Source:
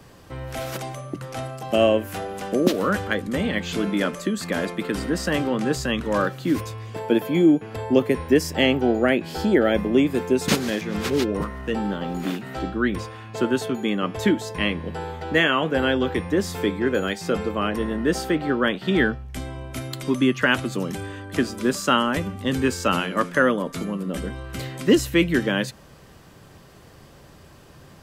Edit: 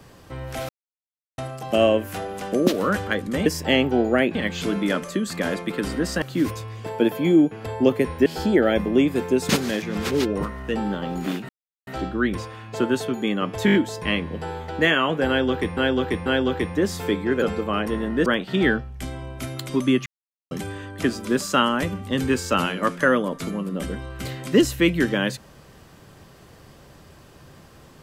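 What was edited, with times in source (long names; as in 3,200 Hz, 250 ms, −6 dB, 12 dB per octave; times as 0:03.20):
0:00.69–0:01.38: silence
0:05.33–0:06.32: remove
0:08.36–0:09.25: move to 0:03.46
0:12.48: splice in silence 0.38 s
0:14.27: stutter 0.02 s, 5 plays
0:15.81–0:16.30: repeat, 3 plays
0:16.97–0:17.30: remove
0:18.14–0:18.60: remove
0:20.40–0:20.85: silence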